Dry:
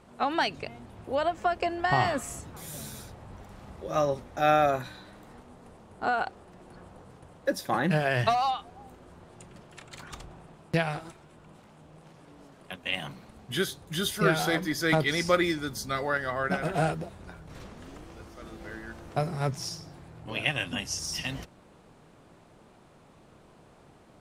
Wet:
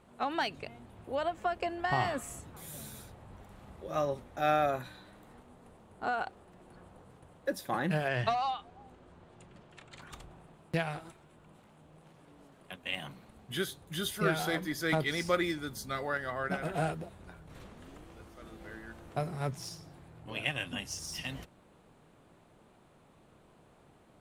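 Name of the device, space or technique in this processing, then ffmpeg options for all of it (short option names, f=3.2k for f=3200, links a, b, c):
exciter from parts: -filter_complex "[0:a]asplit=2[a][b];[b]highpass=2.2k,asoftclip=type=tanh:threshold=-33.5dB,highpass=f=4.4k:w=0.5412,highpass=f=4.4k:w=1.3066,volume=-7dB[c];[a][c]amix=inputs=2:normalize=0,asettb=1/sr,asplit=3[d][e][f];[d]atrim=end=8.084[g];[e]atrim=start=8.08:end=10.02,asetpts=PTS-STARTPTS,afade=t=in:d=0.004:c=qsin,afade=t=out:st=1.936:d=0.004:c=qsin,lowpass=6.8k[h];[f]atrim=start=10.016[i];[g][h]acrossfade=d=0.004:c1=hsin:c2=qsin[j];[j][i]acrossfade=d=0.004:c1=qsin:c2=hsin,volume=-5.5dB"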